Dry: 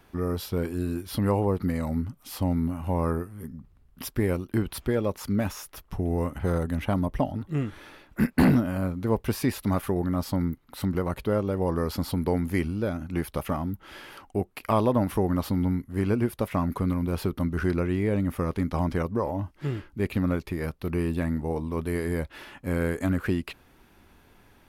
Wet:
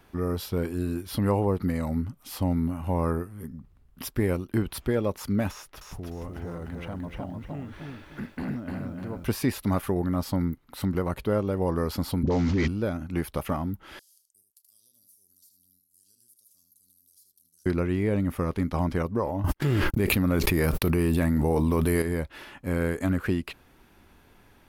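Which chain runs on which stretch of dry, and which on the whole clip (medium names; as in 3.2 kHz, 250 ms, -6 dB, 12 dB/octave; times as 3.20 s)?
5.51–9.24 s: treble shelf 8.1 kHz -12 dB + compression 2.5:1, threshold -38 dBFS + bit-crushed delay 301 ms, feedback 35%, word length 11-bit, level -3 dB
12.23–12.68 s: CVSD coder 32 kbps + phase dispersion highs, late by 43 ms, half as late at 580 Hz + level flattener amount 100%
13.99–17.66 s: inverse Chebyshev high-pass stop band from 2.4 kHz, stop band 50 dB + compression 4:1, threshold -57 dBFS + delay 77 ms -7.5 dB
19.44–22.02 s: gate -51 dBFS, range -60 dB + treble shelf 10 kHz +12 dB + level flattener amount 100%
whole clip: none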